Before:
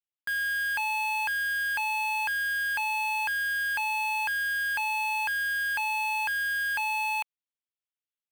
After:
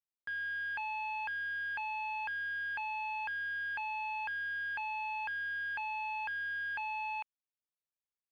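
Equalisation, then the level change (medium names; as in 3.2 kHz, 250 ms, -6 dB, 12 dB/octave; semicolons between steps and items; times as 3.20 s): distance through air 330 m; -6.0 dB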